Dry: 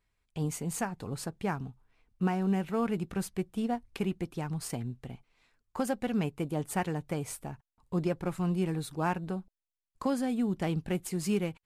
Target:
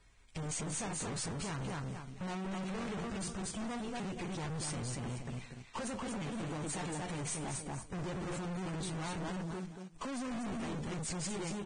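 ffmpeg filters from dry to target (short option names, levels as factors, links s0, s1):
-filter_complex "[0:a]asplit=2[s0][s1];[s1]acompressor=threshold=0.00891:ratio=16,volume=0.708[s2];[s0][s2]amix=inputs=2:normalize=0,alimiter=level_in=1.33:limit=0.0631:level=0:latency=1:release=41,volume=0.75,asplit=2[s3][s4];[s4]aecho=0:1:235|470|705:0.501|0.105|0.0221[s5];[s3][s5]amix=inputs=2:normalize=0,flanger=delay=7.2:depth=9.5:regen=-67:speed=0.2:shape=sinusoidal,aeval=exprs='(tanh(316*val(0)+0.25)-tanh(0.25))/316':c=same,acrusher=bits=3:mode=log:mix=0:aa=0.000001,volume=4.22" -ar 22050 -c:a libvorbis -b:a 16k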